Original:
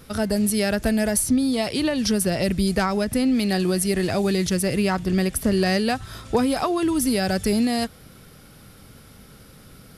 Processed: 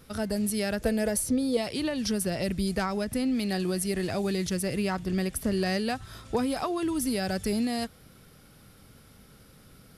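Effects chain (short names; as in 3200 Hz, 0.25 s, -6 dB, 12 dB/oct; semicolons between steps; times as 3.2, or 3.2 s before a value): 0.8–1.57 bell 490 Hz +14 dB 0.27 oct; gain -7 dB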